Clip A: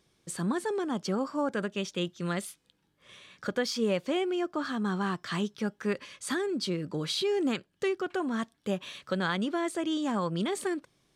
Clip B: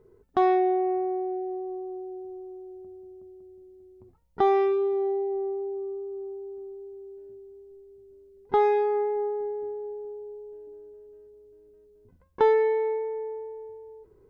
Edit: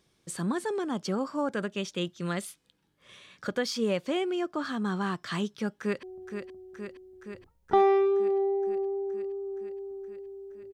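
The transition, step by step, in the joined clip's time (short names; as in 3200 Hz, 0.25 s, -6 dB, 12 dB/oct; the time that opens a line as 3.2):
clip A
5.74–6.03 echo throw 0.47 s, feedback 75%, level -7.5 dB
6.03 switch to clip B from 2.7 s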